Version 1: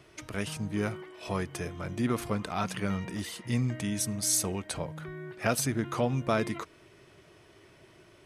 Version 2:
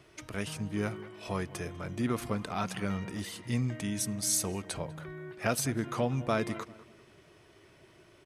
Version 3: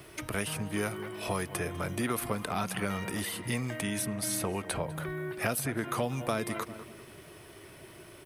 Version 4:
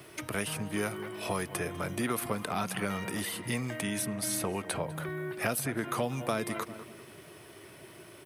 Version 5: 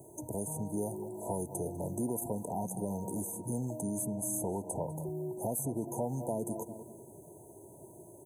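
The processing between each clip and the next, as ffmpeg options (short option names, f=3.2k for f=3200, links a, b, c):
-filter_complex "[0:a]asplit=2[a][b];[b]adelay=197,lowpass=f=2.2k:p=1,volume=-17dB,asplit=2[c][d];[d]adelay=197,lowpass=f=2.2k:p=1,volume=0.34,asplit=2[e][f];[f]adelay=197,lowpass=f=2.2k:p=1,volume=0.34[g];[a][c][e][g]amix=inputs=4:normalize=0,volume=-2dB"
-filter_complex "[0:a]acrossover=split=430|3200[a][b][c];[a]acompressor=threshold=-43dB:ratio=4[d];[b]acompressor=threshold=-40dB:ratio=4[e];[c]acompressor=threshold=-53dB:ratio=4[f];[d][e][f]amix=inputs=3:normalize=0,aexciter=amount=4.1:drive=5.4:freq=9k,volume=8dB"
-af "highpass=100"
-filter_complex "[0:a]afftfilt=real='re*(1-between(b*sr/4096,1000,6100))':imag='im*(1-between(b*sr/4096,1000,6100))':win_size=4096:overlap=0.75,asplit=2[a][b];[b]alimiter=level_in=3dB:limit=-24dB:level=0:latency=1:release=14,volume=-3dB,volume=-2.5dB[c];[a][c]amix=inputs=2:normalize=0,volume=-5.5dB"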